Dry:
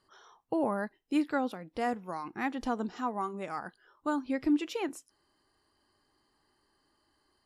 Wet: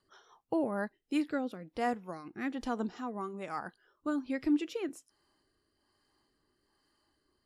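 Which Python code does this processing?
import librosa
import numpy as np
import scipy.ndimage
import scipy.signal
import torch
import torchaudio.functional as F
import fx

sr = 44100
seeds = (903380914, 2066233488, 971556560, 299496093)

y = fx.rotary_switch(x, sr, hz=5.0, then_hz=1.2, switch_at_s=0.41)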